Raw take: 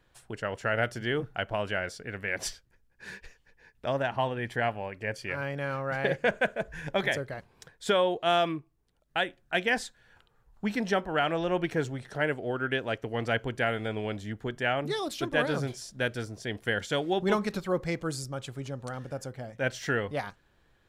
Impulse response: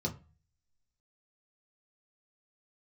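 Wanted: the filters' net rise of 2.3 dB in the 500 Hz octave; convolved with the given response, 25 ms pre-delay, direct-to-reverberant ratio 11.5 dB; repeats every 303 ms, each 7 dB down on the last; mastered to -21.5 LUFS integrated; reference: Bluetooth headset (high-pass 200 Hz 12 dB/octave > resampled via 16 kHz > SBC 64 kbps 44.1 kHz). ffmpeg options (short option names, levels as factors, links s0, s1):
-filter_complex "[0:a]equalizer=f=500:t=o:g=3,aecho=1:1:303|606|909|1212|1515:0.447|0.201|0.0905|0.0407|0.0183,asplit=2[s0][s1];[1:a]atrim=start_sample=2205,adelay=25[s2];[s1][s2]afir=irnorm=-1:irlink=0,volume=0.188[s3];[s0][s3]amix=inputs=2:normalize=0,highpass=200,aresample=16000,aresample=44100,volume=2.24" -ar 44100 -c:a sbc -b:a 64k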